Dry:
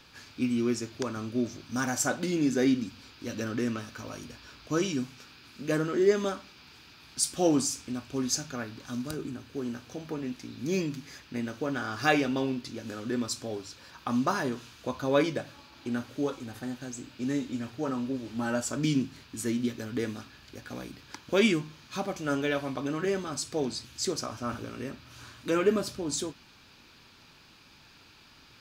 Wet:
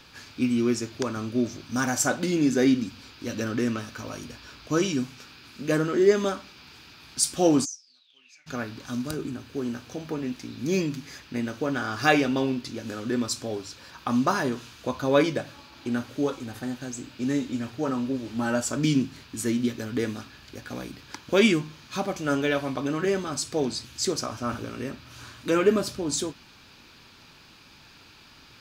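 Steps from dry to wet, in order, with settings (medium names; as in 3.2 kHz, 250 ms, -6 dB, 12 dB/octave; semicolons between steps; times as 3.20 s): 7.64–8.46 s: band-pass filter 6.8 kHz -> 2 kHz, Q 17; 9.34–10.50 s: crackle 450 per s -61 dBFS; trim +4 dB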